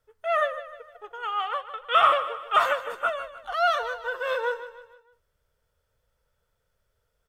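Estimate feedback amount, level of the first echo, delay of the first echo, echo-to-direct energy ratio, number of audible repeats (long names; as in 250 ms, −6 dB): 43%, −13.0 dB, 153 ms, −12.0 dB, 4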